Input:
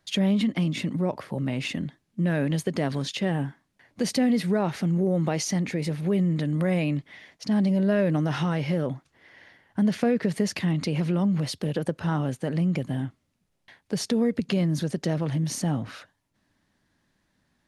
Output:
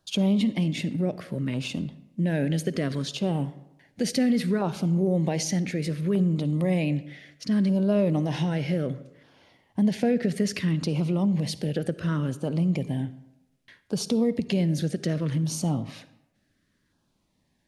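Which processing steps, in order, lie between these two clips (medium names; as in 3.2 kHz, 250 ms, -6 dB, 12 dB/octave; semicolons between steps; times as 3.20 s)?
LFO notch saw down 0.65 Hz 710–2100 Hz; on a send: reverberation RT60 0.90 s, pre-delay 48 ms, DRR 15.5 dB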